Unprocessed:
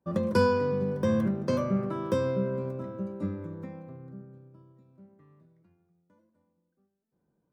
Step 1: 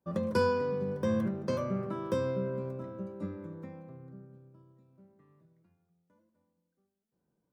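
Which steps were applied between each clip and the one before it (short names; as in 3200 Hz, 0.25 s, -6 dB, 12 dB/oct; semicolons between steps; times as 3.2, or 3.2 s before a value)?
notches 50/100/150/200/250/300/350 Hz; gain -3.5 dB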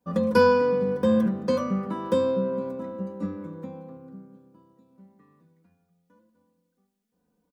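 comb 4.1 ms, depth 94%; gain +4 dB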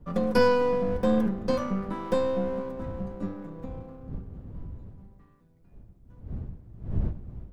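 half-wave gain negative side -7 dB; wind noise 100 Hz -38 dBFS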